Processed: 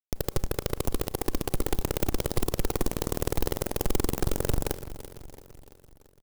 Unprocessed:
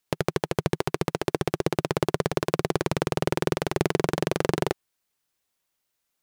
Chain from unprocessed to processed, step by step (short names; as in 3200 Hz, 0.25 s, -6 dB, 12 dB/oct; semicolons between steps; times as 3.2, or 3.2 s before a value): bell 220 Hz -10 dB 0.82 oct; in parallel at -4.5 dB: bit-crush 6-bit; on the sum: Schmitt trigger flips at -17.5 dBFS; on a send: feedback echo 0.337 s, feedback 55%, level -14 dB; on the sum: Schroeder reverb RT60 0.41 s, combs from 29 ms, DRR 19 dB; clock jitter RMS 0.13 ms; gain +5 dB